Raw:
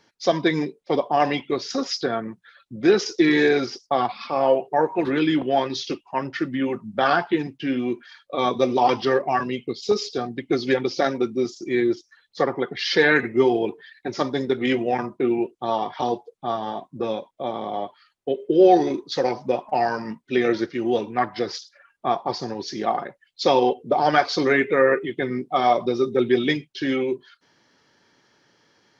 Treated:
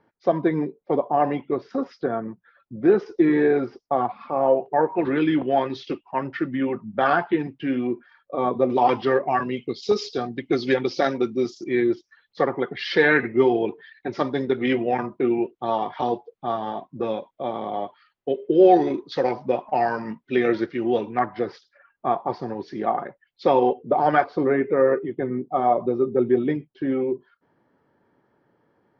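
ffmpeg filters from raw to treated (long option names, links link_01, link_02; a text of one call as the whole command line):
ffmpeg -i in.wav -af "asetnsamples=nb_out_samples=441:pad=0,asendcmd='4.66 lowpass f 2300;7.87 lowpass f 1200;8.7 lowpass f 2600;9.57 lowpass f 5100;11.64 lowpass f 3000;21.19 lowpass f 1800;24.24 lowpass f 1000',lowpass=1200" out.wav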